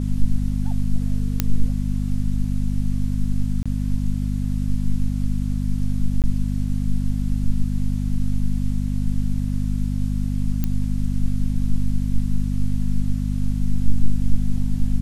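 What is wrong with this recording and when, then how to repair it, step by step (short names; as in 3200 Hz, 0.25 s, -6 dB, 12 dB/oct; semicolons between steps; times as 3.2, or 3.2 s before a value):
hum 50 Hz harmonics 5 -23 dBFS
1.4 pop -4 dBFS
3.63–3.66 gap 26 ms
6.22–6.24 gap 18 ms
10.64 pop -10 dBFS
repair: de-click; de-hum 50 Hz, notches 5; interpolate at 3.63, 26 ms; interpolate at 6.22, 18 ms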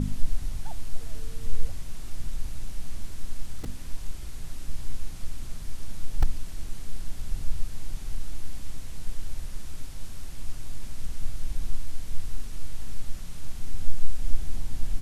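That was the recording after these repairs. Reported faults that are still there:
none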